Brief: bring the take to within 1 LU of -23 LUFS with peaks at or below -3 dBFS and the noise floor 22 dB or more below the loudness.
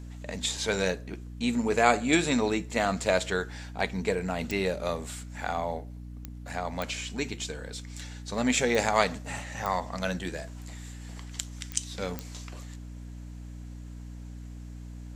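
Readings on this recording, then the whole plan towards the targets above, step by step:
clicks 7; hum 60 Hz; harmonics up to 300 Hz; hum level -39 dBFS; loudness -29.5 LUFS; peak -6.0 dBFS; loudness target -23.0 LUFS
-> de-click; de-hum 60 Hz, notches 5; gain +6.5 dB; limiter -3 dBFS

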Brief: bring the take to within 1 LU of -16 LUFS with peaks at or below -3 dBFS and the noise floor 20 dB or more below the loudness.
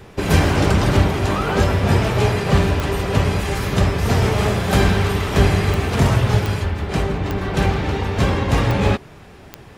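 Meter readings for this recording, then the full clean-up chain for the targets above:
clicks 6; loudness -18.5 LUFS; peak -2.0 dBFS; loudness target -16.0 LUFS
-> de-click; gain +2.5 dB; limiter -3 dBFS

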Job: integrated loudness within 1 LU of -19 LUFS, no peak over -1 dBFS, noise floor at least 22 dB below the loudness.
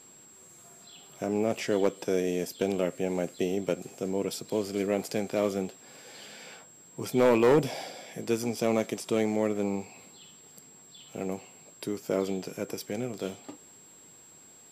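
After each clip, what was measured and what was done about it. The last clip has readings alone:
clipped 0.3%; flat tops at -16.0 dBFS; steady tone 7600 Hz; tone level -52 dBFS; loudness -30.0 LUFS; peak -16.0 dBFS; loudness target -19.0 LUFS
-> clip repair -16 dBFS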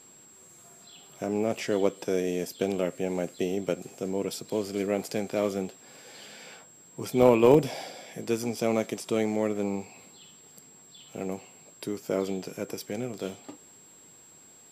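clipped 0.0%; steady tone 7600 Hz; tone level -52 dBFS
-> notch 7600 Hz, Q 30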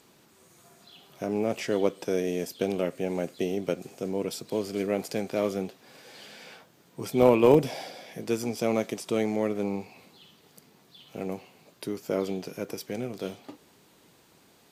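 steady tone none; loudness -29.0 LUFS; peak -7.0 dBFS; loudness target -19.0 LUFS
-> gain +10 dB; limiter -1 dBFS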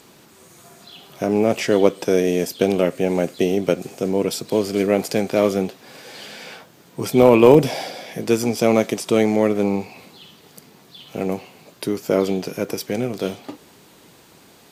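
loudness -19.5 LUFS; peak -1.0 dBFS; noise floor -50 dBFS

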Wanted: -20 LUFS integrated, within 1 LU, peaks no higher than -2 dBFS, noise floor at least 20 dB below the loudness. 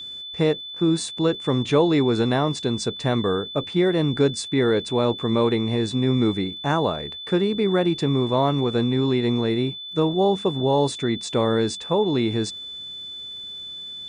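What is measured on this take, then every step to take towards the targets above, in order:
ticks 32/s; steady tone 3500 Hz; tone level -33 dBFS; loudness -22.0 LUFS; peak -6.5 dBFS; loudness target -20.0 LUFS
-> de-click; notch 3500 Hz, Q 30; gain +2 dB

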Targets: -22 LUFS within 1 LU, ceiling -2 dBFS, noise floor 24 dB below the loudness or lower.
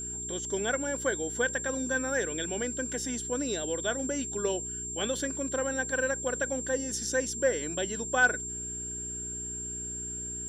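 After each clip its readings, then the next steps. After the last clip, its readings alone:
hum 60 Hz; harmonics up to 420 Hz; hum level -42 dBFS; steady tone 7400 Hz; tone level -35 dBFS; loudness -30.5 LUFS; peak -12.0 dBFS; loudness target -22.0 LUFS
-> de-hum 60 Hz, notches 7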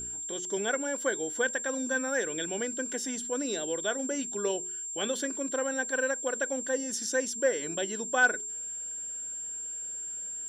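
hum none; steady tone 7400 Hz; tone level -35 dBFS
-> notch 7400 Hz, Q 30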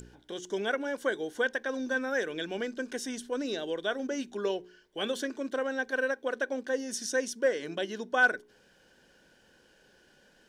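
steady tone none; loudness -32.0 LUFS; peak -12.5 dBFS; loudness target -22.0 LUFS
-> gain +10 dB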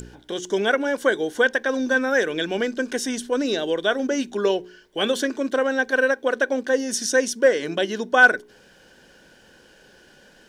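loudness -22.0 LUFS; peak -2.5 dBFS; noise floor -53 dBFS

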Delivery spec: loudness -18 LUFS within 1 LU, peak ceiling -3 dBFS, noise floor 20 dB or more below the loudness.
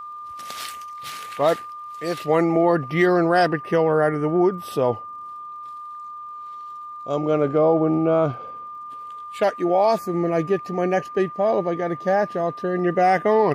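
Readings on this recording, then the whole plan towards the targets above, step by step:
ticks 49/s; steady tone 1200 Hz; tone level -33 dBFS; loudness -21.0 LUFS; peak -7.0 dBFS; loudness target -18.0 LUFS
-> de-click; notch 1200 Hz, Q 30; gain +3 dB

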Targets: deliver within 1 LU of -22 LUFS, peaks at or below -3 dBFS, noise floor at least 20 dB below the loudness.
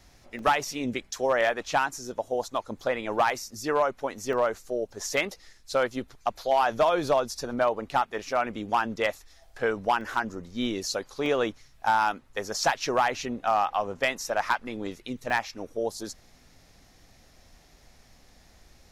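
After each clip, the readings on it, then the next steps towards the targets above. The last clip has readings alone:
clipped 0.4%; flat tops at -15.0 dBFS; dropouts 5; longest dropout 1.5 ms; loudness -28.0 LUFS; peak -15.0 dBFS; loudness target -22.0 LUFS
-> clip repair -15 dBFS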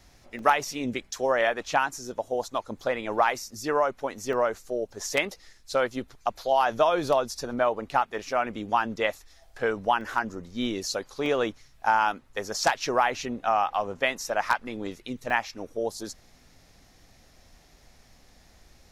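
clipped 0.0%; dropouts 5; longest dropout 1.5 ms
-> interpolate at 0.39/4.33/10.01/11.26/15.3, 1.5 ms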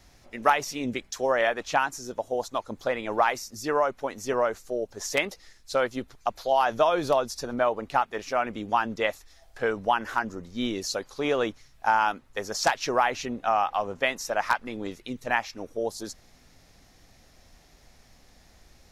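dropouts 0; loudness -27.5 LUFS; peak -6.0 dBFS; loudness target -22.0 LUFS
-> gain +5.5 dB; limiter -3 dBFS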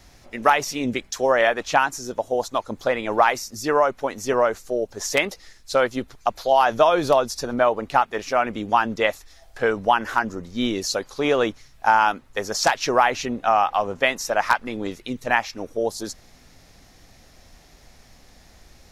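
loudness -22.0 LUFS; peak -3.0 dBFS; noise floor -52 dBFS

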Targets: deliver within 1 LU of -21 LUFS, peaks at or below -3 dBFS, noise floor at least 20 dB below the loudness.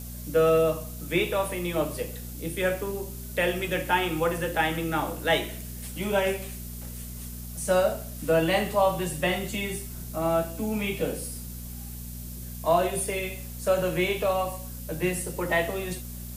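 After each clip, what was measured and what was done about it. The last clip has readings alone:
hum 60 Hz; harmonics up to 240 Hz; hum level -37 dBFS; noise floor -38 dBFS; noise floor target -48 dBFS; loudness -27.5 LUFS; peak -9.5 dBFS; loudness target -21.0 LUFS
-> de-hum 60 Hz, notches 4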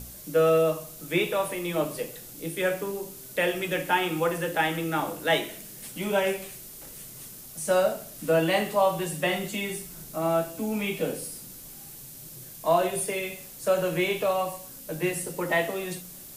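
hum none; noise floor -44 dBFS; noise floor target -48 dBFS
-> denoiser 6 dB, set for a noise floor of -44 dBFS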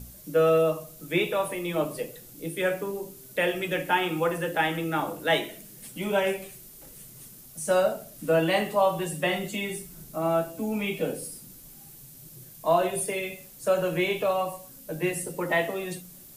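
noise floor -48 dBFS; loudness -27.5 LUFS; peak -10.0 dBFS; loudness target -21.0 LUFS
-> gain +6.5 dB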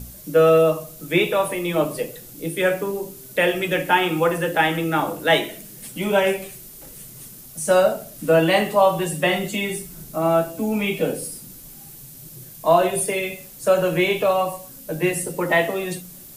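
loudness -21.0 LUFS; peak -3.5 dBFS; noise floor -42 dBFS

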